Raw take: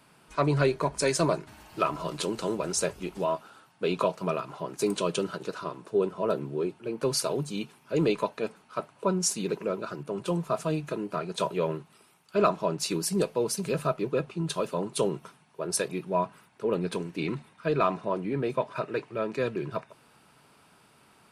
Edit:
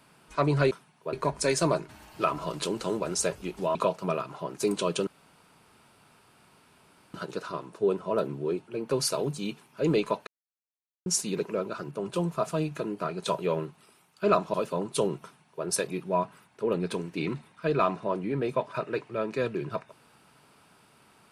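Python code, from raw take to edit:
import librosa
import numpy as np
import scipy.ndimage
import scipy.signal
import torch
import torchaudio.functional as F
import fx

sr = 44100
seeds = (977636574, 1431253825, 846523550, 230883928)

y = fx.edit(x, sr, fx.cut(start_s=3.33, length_s=0.61),
    fx.insert_room_tone(at_s=5.26, length_s=2.07),
    fx.silence(start_s=8.39, length_s=0.79),
    fx.cut(start_s=12.66, length_s=1.89),
    fx.duplicate(start_s=15.24, length_s=0.42, to_s=0.71), tone=tone)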